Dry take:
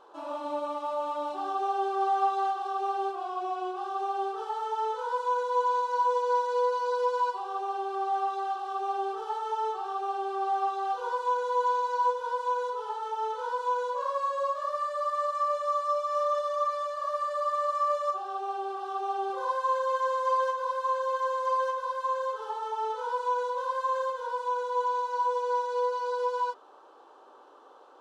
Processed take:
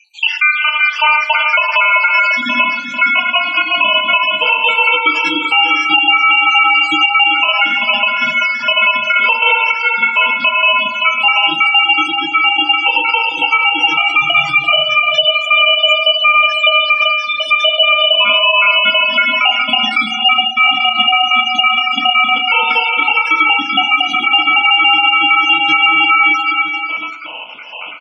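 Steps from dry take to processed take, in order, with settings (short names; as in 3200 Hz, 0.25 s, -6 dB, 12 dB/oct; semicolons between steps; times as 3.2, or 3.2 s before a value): random spectral dropouts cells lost 76%; 4.55–5.67 high shelf 3200 Hz +6 dB; de-hum 49.24 Hz, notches 25; compressor 2:1, threshold -38 dBFS, peak gain reduction 7.5 dB; ring modulator 1800 Hz; high-pass sweep 2100 Hz -> 170 Hz, 0.19–2.87; on a send: tapped delay 0.107/0.339/0.386/0.732/0.784 s -13.5/-16/-8.5/-11.5/-18.5 dB; on the sum: FDN reverb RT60 0.39 s, low-frequency decay 1.4×, high-frequency decay 0.85×, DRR 7 dB; spectral gate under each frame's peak -25 dB strong; bell 2200 Hz +10 dB 1.7 oct; maximiser +25 dB; gain -1 dB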